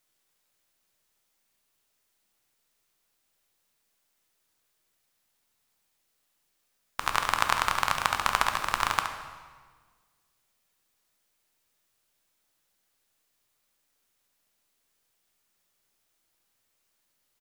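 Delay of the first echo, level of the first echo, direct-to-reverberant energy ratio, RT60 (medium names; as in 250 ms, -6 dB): 70 ms, -9.0 dB, 4.0 dB, 1.5 s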